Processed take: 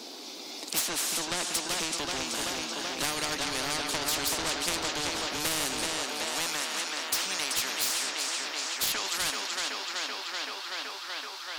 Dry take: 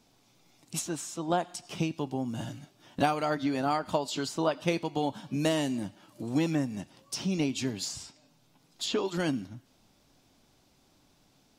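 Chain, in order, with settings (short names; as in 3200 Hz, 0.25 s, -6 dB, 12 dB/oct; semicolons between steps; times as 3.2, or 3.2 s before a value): HPF 220 Hz 24 dB/oct; bell 4400 Hz +10 dB 0.81 oct; tape echo 0.381 s, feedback 75%, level -7 dB, low-pass 5400 Hz; high-pass sweep 320 Hz -> 1300 Hz, 5.85–6.63; soft clip -20.5 dBFS, distortion -13 dB; spectral compressor 4:1; gain +8 dB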